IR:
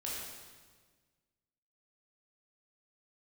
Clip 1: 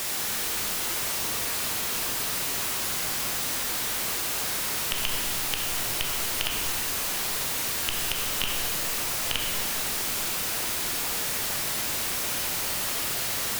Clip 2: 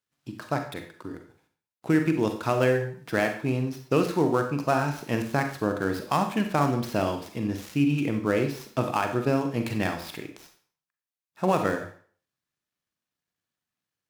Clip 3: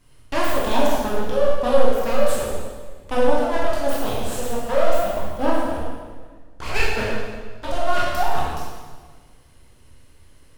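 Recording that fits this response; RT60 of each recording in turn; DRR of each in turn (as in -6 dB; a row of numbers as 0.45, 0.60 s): 3; 2.8, 0.50, 1.5 s; -1.0, 5.5, -6.0 dB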